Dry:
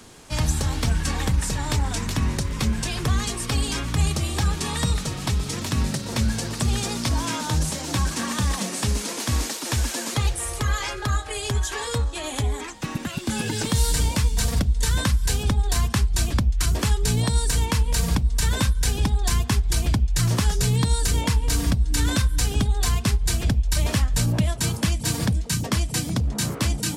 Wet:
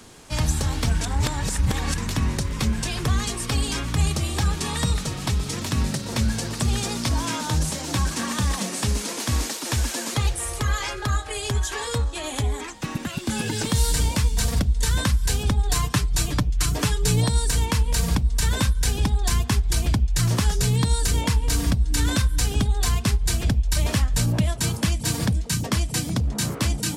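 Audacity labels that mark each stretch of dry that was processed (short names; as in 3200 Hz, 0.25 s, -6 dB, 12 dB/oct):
1.010000	1.980000	reverse
15.690000	17.280000	comb 6.7 ms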